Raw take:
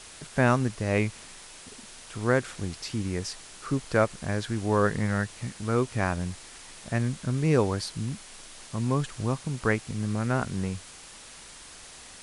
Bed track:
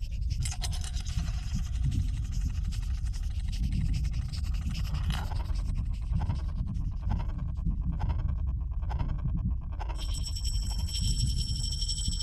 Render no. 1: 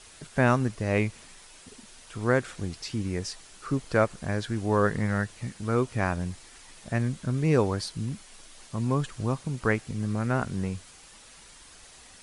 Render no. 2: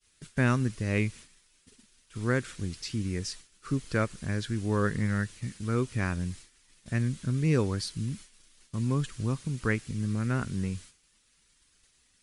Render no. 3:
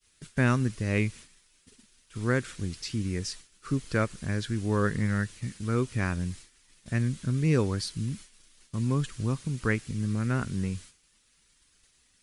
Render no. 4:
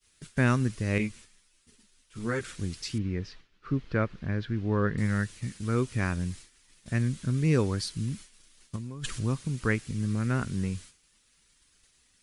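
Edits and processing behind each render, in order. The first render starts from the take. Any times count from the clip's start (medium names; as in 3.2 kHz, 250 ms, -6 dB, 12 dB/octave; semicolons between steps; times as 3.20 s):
noise reduction 6 dB, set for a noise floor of -47 dBFS
expander -40 dBFS; peaking EQ 740 Hz -12 dB 1.3 oct
trim +1 dB
0.98–2.41 s: three-phase chorus; 2.98–4.98 s: distance through air 280 m; 8.76–9.22 s: compressor with a negative ratio -36 dBFS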